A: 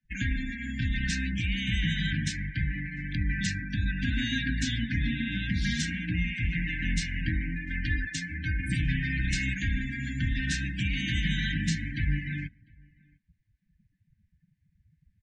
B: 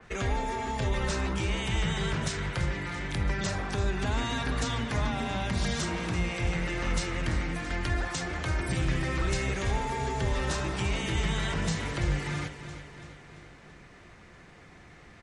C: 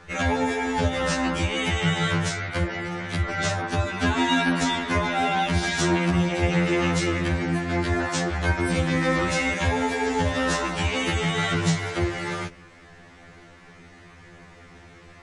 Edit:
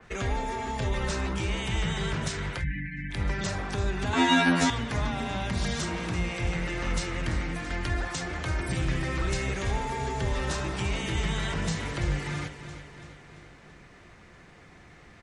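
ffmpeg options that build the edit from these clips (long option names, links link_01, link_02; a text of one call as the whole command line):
ffmpeg -i take0.wav -i take1.wav -i take2.wav -filter_complex "[1:a]asplit=3[link_01][link_02][link_03];[link_01]atrim=end=2.65[link_04];[0:a]atrim=start=2.55:end=3.19[link_05];[link_02]atrim=start=3.09:end=4.132[link_06];[2:a]atrim=start=4.128:end=4.702[link_07];[link_03]atrim=start=4.698[link_08];[link_04][link_05]acrossfade=duration=0.1:curve1=tri:curve2=tri[link_09];[link_09][link_06]acrossfade=duration=0.1:curve1=tri:curve2=tri[link_10];[link_10][link_07]acrossfade=duration=0.004:curve1=hsin:curve2=hsin[link_11];[link_11][link_08]acrossfade=duration=0.004:curve1=hsin:curve2=hsin" out.wav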